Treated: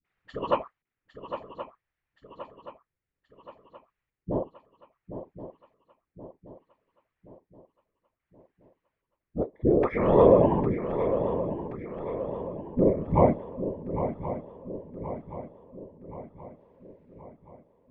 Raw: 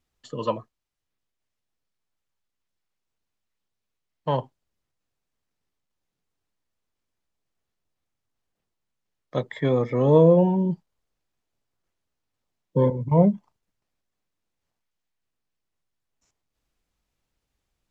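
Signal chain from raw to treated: bass shelf 390 Hz -10 dB; phase dispersion highs, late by 48 ms, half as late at 330 Hz; LFO low-pass square 0.61 Hz 370–2000 Hz; whisper effect; shuffle delay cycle 1075 ms, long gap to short 3:1, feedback 49%, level -10 dB; trim +2 dB

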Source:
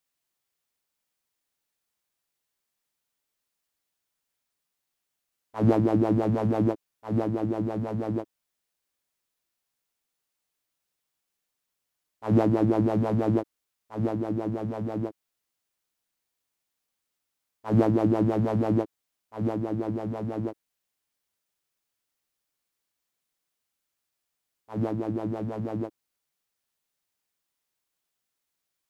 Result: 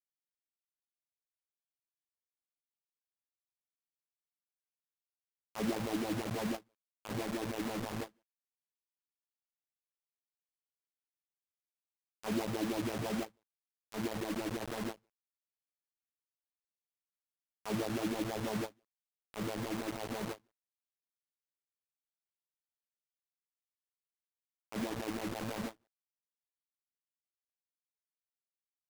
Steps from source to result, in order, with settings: elliptic band-pass 130–2900 Hz; compression 2.5:1, threshold -28 dBFS, peak gain reduction 8 dB; flange 1.2 Hz, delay 1 ms, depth 7.6 ms, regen -10%; bit crusher 6-bit; endings held to a fixed fall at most 400 dB/s; trim -3.5 dB

